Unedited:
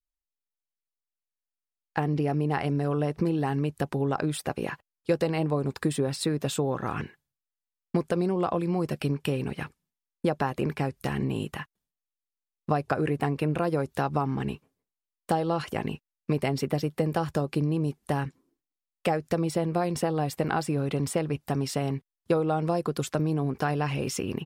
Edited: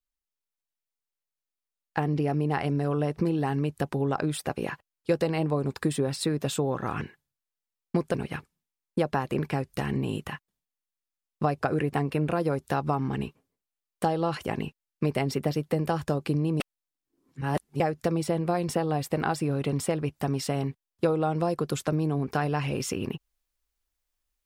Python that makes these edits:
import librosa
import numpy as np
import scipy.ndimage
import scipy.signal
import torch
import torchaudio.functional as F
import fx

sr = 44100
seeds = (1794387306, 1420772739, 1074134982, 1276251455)

y = fx.edit(x, sr, fx.cut(start_s=8.14, length_s=1.27),
    fx.reverse_span(start_s=17.87, length_s=1.2), tone=tone)